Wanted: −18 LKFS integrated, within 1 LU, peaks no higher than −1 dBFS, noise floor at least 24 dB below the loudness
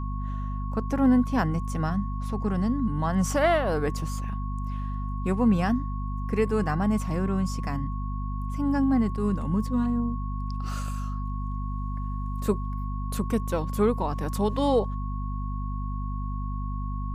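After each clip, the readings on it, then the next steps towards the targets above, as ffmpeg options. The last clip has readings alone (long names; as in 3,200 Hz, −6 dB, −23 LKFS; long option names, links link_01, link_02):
mains hum 50 Hz; hum harmonics up to 250 Hz; level of the hum −28 dBFS; interfering tone 1,100 Hz; level of the tone −39 dBFS; integrated loudness −28.0 LKFS; sample peak −11.5 dBFS; target loudness −18.0 LKFS
→ -af "bandreject=frequency=50:width_type=h:width=6,bandreject=frequency=100:width_type=h:width=6,bandreject=frequency=150:width_type=h:width=6,bandreject=frequency=200:width_type=h:width=6,bandreject=frequency=250:width_type=h:width=6"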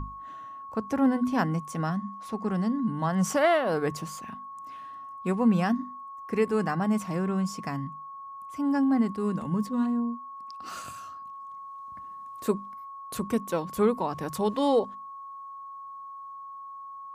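mains hum none found; interfering tone 1,100 Hz; level of the tone −39 dBFS
→ -af "bandreject=frequency=1100:width=30"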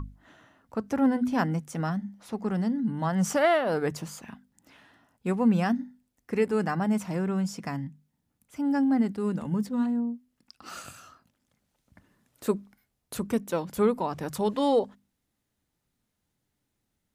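interfering tone none found; integrated loudness −28.0 LKFS; sample peak −12.5 dBFS; target loudness −18.0 LKFS
→ -af "volume=10dB"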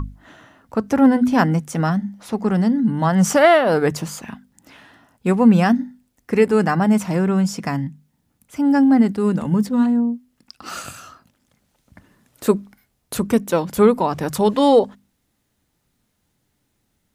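integrated loudness −18.0 LKFS; sample peak −2.5 dBFS; background noise floor −70 dBFS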